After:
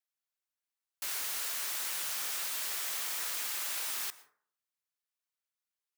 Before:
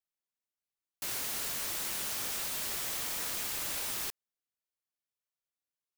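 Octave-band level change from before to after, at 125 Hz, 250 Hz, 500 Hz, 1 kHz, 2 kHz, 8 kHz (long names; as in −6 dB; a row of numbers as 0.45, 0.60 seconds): below −15 dB, −11.5 dB, −6.0 dB, −1.0 dB, +0.5 dB, 0.0 dB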